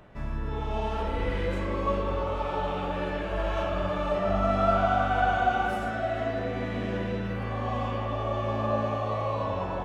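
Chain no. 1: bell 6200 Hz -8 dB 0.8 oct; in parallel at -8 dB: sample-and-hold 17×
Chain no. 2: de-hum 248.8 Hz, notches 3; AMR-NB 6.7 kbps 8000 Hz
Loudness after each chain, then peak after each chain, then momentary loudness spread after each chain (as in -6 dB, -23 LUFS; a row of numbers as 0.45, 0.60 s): -26.5, -31.5 LUFS; -8.0, -12.5 dBFS; 7, 7 LU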